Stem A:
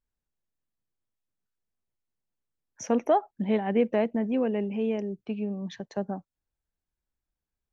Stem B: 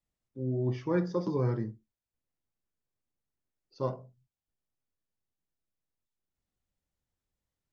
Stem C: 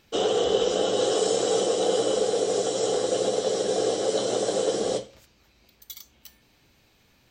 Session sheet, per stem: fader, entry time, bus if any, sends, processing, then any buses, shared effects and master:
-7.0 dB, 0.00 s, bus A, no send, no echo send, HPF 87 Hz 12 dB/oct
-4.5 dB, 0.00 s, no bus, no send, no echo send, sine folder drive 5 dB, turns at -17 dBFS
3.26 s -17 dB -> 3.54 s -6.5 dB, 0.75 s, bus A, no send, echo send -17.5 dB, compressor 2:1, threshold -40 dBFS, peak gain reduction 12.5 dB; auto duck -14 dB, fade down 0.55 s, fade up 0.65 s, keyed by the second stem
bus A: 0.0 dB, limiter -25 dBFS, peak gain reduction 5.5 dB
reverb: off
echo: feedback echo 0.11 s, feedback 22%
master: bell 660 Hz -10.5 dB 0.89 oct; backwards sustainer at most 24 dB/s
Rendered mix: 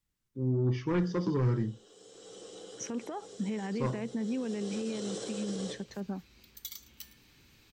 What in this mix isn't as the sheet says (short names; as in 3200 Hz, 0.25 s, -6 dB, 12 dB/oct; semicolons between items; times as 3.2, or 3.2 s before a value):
stem A -7.0 dB -> -0.5 dB; stem C -17.0 dB -> -9.5 dB; master: missing backwards sustainer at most 24 dB/s